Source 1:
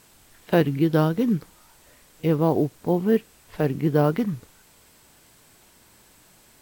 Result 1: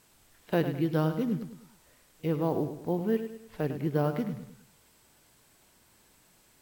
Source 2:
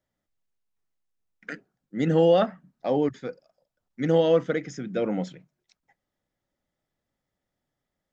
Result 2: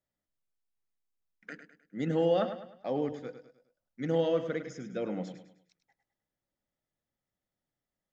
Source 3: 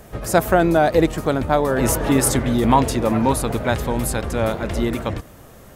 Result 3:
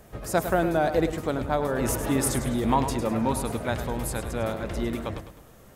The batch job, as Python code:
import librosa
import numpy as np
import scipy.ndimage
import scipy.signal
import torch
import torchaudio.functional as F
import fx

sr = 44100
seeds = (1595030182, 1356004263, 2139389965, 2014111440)

y = fx.echo_feedback(x, sr, ms=103, feedback_pct=40, wet_db=-10)
y = F.gain(torch.from_numpy(y), -8.0).numpy()